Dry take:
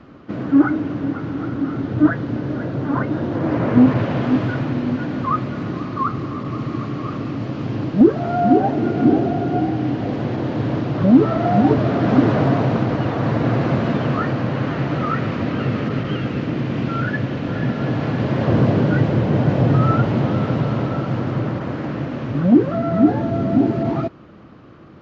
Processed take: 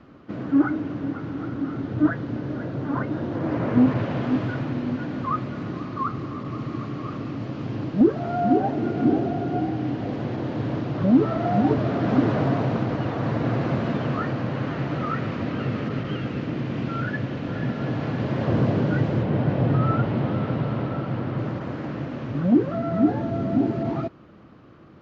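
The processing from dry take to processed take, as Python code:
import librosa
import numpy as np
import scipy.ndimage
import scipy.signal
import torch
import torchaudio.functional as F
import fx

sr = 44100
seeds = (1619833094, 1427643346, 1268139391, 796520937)

y = fx.lowpass(x, sr, hz=4200.0, slope=12, at=(19.23, 21.39))
y = y * librosa.db_to_amplitude(-5.5)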